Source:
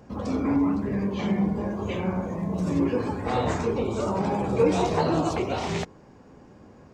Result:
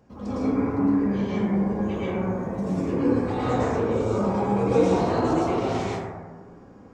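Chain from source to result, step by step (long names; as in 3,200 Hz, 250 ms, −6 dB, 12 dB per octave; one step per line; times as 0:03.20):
dense smooth reverb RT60 1.4 s, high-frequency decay 0.3×, pre-delay 95 ms, DRR −8.5 dB
level −8.5 dB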